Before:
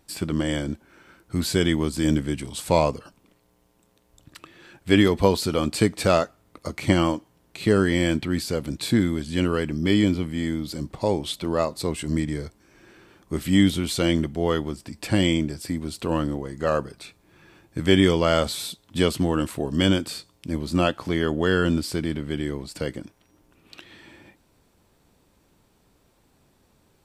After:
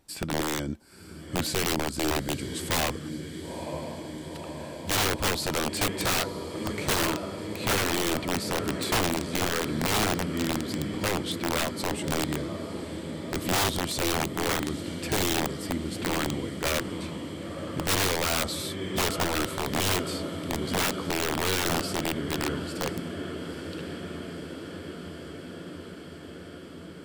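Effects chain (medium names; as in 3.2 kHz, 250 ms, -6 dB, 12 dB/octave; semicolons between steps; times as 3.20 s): echo that smears into a reverb 965 ms, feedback 76%, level -11 dB; dynamic bell 1.3 kHz, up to +5 dB, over -44 dBFS, Q 7.4; integer overflow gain 16 dB; trim -3.5 dB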